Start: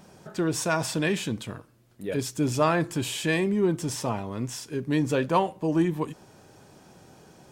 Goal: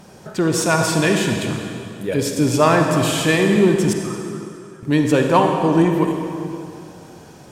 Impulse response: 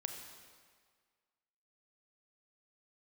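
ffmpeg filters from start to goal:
-filter_complex "[0:a]asettb=1/sr,asplit=3[a][b][c];[a]atrim=end=3.934[d];[b]atrim=start=3.93:end=4.83,asetpts=PTS-STARTPTS,afade=t=in:d=0.004:c=qsin,afade=t=out:st=0.896:d=0.004:c=qsin,bandpass=f=1.3k:t=q:w=13:csg=0[e];[c]atrim=start=4.826[f];[d][e]acrossfade=d=0.004:c1=hsin:c2=qsin[g];[g][f]acrossfade=d=0.004:c1=qsin:c2=hsin[h];[1:a]atrim=start_sample=2205,asetrate=29547,aresample=44100[i];[h][i]afir=irnorm=-1:irlink=0,volume=8dB"

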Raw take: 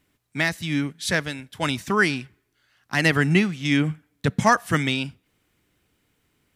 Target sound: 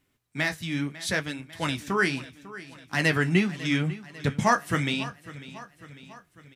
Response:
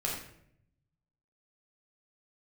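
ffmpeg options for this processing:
-af "flanger=delay=7.5:depth=9:regen=-45:speed=0.76:shape=sinusoidal,aecho=1:1:548|1096|1644|2192|2740:0.141|0.0805|0.0459|0.0262|0.0149"

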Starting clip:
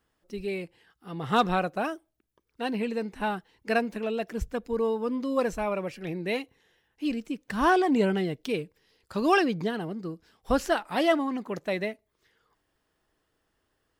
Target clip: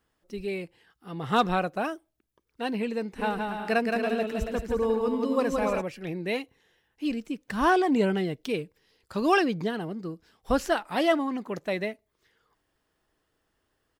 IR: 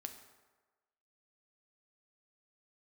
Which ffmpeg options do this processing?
-filter_complex "[0:a]asplit=3[a][b][c];[a]afade=t=out:st=3.18:d=0.02[d];[b]aecho=1:1:170|280.5|352.3|399|429.4:0.631|0.398|0.251|0.158|0.1,afade=t=in:st=3.18:d=0.02,afade=t=out:st=5.8:d=0.02[e];[c]afade=t=in:st=5.8:d=0.02[f];[d][e][f]amix=inputs=3:normalize=0"

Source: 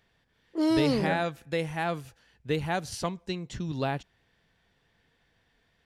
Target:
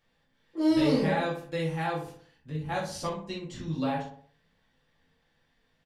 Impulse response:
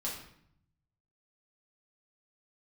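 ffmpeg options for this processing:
-filter_complex "[0:a]asettb=1/sr,asplit=3[a][b][c];[a]atrim=end=2.024[d];[b]atrim=start=2.02:end=2.69,asetpts=PTS-STARTPTS,afade=t=in:d=0.004:c=qsin,afade=t=out:st=0.666:d=0.004:c=qsin,acrossover=split=210[e][f];[f]acompressor=threshold=-46dB:ratio=3[g];[e][g]amix=inputs=2:normalize=0[h];[c]atrim=start=2.686[i];[d][h]acrossfade=d=0.004:c1=hsin:c2=qsin[j];[j][i]acrossfade=d=0.004:c1=qsin:c2=hsin,asplit=2[k][l];[l]adelay=61,lowpass=f=1.6k:p=1,volume=-6.5dB,asplit=2[m][n];[n]adelay=61,lowpass=f=1.6k:p=1,volume=0.51,asplit=2[o][p];[p]adelay=61,lowpass=f=1.6k:p=1,volume=0.51,asplit=2[q][r];[r]adelay=61,lowpass=f=1.6k:p=1,volume=0.51,asplit=2[s][t];[t]adelay=61,lowpass=f=1.6k:p=1,volume=0.51,asplit=2[u][v];[v]adelay=61,lowpass=f=1.6k:p=1,volume=0.51[w];[k][m][o][q][s][u][w]amix=inputs=7:normalize=0[x];[1:a]atrim=start_sample=2205,atrim=end_sample=3528[y];[x][y]afir=irnorm=-1:irlink=0,volume=-3.5dB"

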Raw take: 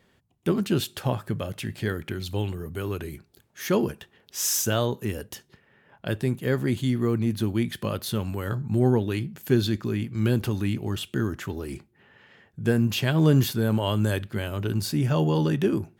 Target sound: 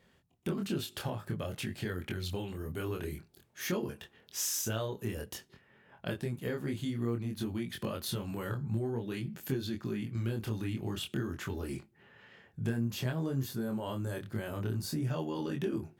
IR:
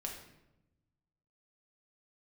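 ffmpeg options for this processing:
-filter_complex "[0:a]asettb=1/sr,asplit=3[a][b][c];[a]atrim=end=12.764[d];[b]atrim=start=12.76:end=15.05,asetpts=PTS-STARTPTS,afade=t=in:d=0.004:c=qsin,afade=t=out:st=2.286:d=0.004:c=qsin,equalizer=f=2.9k:w=1.5:g=-7[e];[c]atrim=start=15.046[f];[d][e]acrossfade=d=0.004:c1=hsin:c2=qsin[g];[g][f]acrossfade=d=0.004:c1=qsin:c2=hsin,acompressor=threshold=-28dB:ratio=5,flanger=delay=22.5:depth=4.6:speed=0.52"

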